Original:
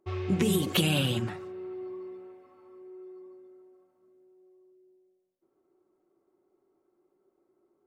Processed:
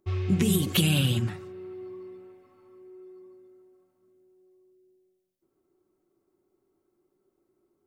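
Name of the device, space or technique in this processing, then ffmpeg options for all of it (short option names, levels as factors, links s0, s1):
smiley-face EQ: -af "lowshelf=f=170:g=7.5,equalizer=f=650:t=o:w=2.3:g=-6.5,highshelf=f=7800:g=4.5,volume=1.19"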